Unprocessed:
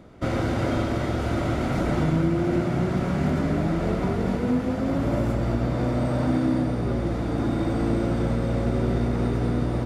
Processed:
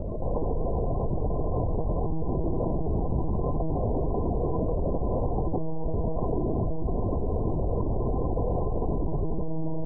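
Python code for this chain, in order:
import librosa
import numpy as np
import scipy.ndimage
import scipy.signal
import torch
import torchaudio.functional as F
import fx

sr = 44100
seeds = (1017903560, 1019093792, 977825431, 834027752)

y = fx.peak_eq(x, sr, hz=850.0, db=-11.0, octaves=0.69)
y = y + 0.68 * np.pad(y, (int(1.7 * sr / 1000.0), 0))[:len(y)]
y = np.clip(10.0 ** (27.5 / 20.0) * y, -1.0, 1.0) / 10.0 ** (27.5 / 20.0)
y = fx.brickwall_lowpass(y, sr, high_hz=1100.0)
y = y + 10.0 ** (-4.5 / 20.0) * np.pad(y, (int(75 * sr / 1000.0), 0))[:len(y)]
y = fx.lpc_monotone(y, sr, seeds[0], pitch_hz=160.0, order=10)
y = fx.env_flatten(y, sr, amount_pct=70)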